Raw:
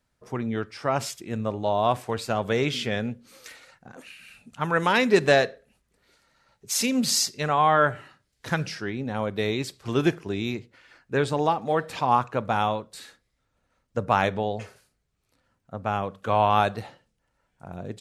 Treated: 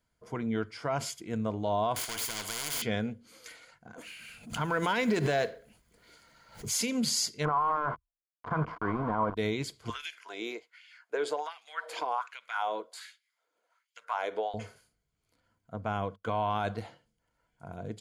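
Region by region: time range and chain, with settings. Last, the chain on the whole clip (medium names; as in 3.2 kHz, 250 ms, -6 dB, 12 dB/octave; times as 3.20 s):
1.96–2.82 s: waveshaping leveller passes 3 + spectrum-flattening compressor 10:1
3.98–6.82 s: companding laws mixed up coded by mu + swell ahead of each attack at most 130 dB/s
7.45–9.37 s: compressor with a negative ratio -26 dBFS + small samples zeroed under -29 dBFS + resonant low-pass 1.1 kHz, resonance Q 5.1
9.90–14.54 s: peaking EQ 140 Hz -11.5 dB 2.2 oct + compression 4:1, threshold -27 dBFS + LFO high-pass sine 1.3 Hz 360–2700 Hz
15.76–16.81 s: gate -45 dBFS, range -27 dB + treble shelf 9.8 kHz -5 dB
whole clip: rippled EQ curve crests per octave 1.8, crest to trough 7 dB; peak limiter -15 dBFS; trim -4.5 dB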